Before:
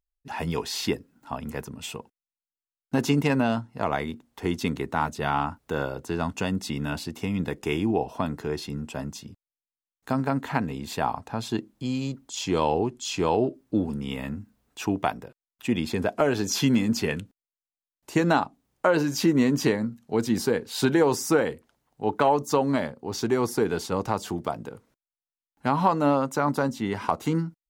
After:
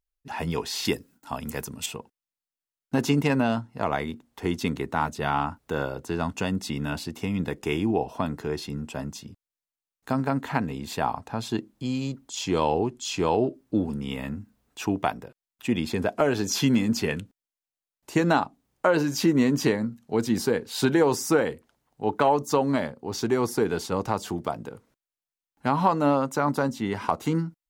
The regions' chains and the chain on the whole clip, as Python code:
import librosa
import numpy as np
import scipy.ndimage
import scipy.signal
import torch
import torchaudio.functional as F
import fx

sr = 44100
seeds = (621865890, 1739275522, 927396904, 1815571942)

y = fx.chain(x, sr, fx.gate_hold(open_db=-51.0, close_db=-58.0, hold_ms=71.0, range_db=-21, attack_ms=1.4, release_ms=100.0),
    fx.high_shelf(hz=3900.0, db=11.5), at=(0.85, 1.86))